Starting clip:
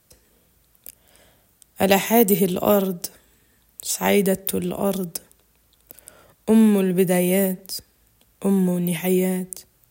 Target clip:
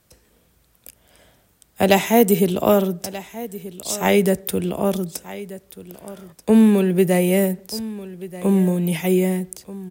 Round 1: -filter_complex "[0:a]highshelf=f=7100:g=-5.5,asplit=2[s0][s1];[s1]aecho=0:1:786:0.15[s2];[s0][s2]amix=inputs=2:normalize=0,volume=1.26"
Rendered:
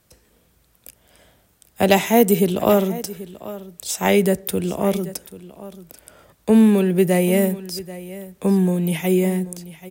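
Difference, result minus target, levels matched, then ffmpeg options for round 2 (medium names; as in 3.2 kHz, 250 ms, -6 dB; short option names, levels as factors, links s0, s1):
echo 448 ms early
-filter_complex "[0:a]highshelf=f=7100:g=-5.5,asplit=2[s0][s1];[s1]aecho=0:1:1234:0.15[s2];[s0][s2]amix=inputs=2:normalize=0,volume=1.26"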